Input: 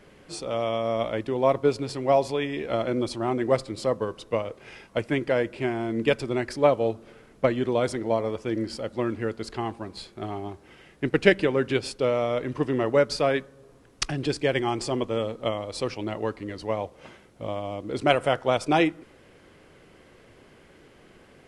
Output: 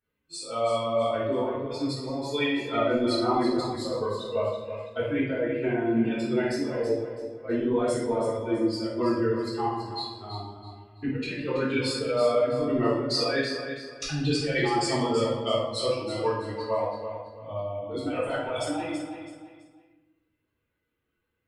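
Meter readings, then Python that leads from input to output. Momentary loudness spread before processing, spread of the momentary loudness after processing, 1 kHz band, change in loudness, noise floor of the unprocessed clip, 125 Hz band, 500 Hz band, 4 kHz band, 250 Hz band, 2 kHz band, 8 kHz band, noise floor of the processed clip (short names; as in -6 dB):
11 LU, 10 LU, -1.5 dB, -1.5 dB, -54 dBFS, -1.5 dB, -2.0 dB, +1.5 dB, +1.0 dB, -3.0 dB, 0.0 dB, -79 dBFS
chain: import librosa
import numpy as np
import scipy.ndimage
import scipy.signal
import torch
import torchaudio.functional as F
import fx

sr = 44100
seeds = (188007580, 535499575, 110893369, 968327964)

y = fx.bin_expand(x, sr, power=2.0)
y = fx.highpass(y, sr, hz=400.0, slope=6)
y = fx.high_shelf(y, sr, hz=7300.0, db=-10.0)
y = fx.over_compress(y, sr, threshold_db=-37.0, ratio=-1.0)
y = fx.echo_feedback(y, sr, ms=329, feedback_pct=30, wet_db=-9.0)
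y = fx.room_shoebox(y, sr, seeds[0], volume_m3=260.0, walls='mixed', distance_m=3.6)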